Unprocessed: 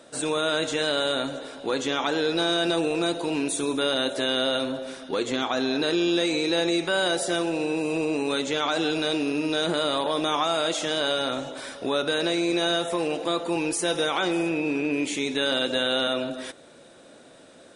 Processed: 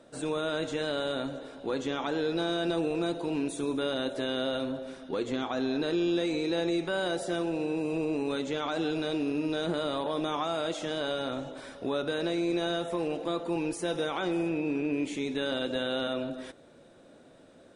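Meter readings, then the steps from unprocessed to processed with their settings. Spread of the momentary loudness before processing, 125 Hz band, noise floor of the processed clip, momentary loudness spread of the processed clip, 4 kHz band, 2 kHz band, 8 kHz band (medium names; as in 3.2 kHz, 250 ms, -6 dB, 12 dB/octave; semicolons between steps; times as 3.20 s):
5 LU, -1.5 dB, -56 dBFS, 5 LU, -10.5 dB, -8.5 dB, -13.0 dB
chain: tilt EQ -2 dB/octave; trim -7 dB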